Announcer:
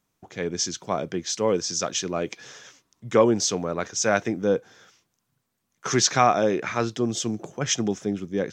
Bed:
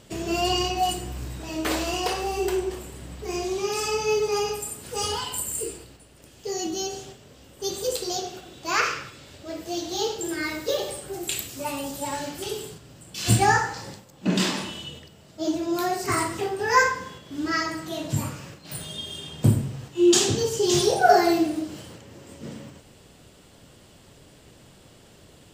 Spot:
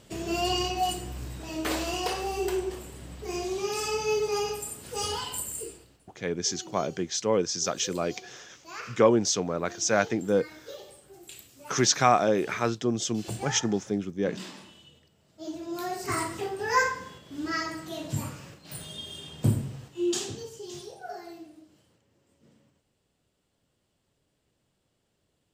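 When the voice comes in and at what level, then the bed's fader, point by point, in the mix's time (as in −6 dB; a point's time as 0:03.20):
5.85 s, −2.0 dB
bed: 0:05.37 −3.5 dB
0:06.33 −17 dB
0:14.95 −17 dB
0:16.11 −5 dB
0:19.74 −5 dB
0:20.96 −23.5 dB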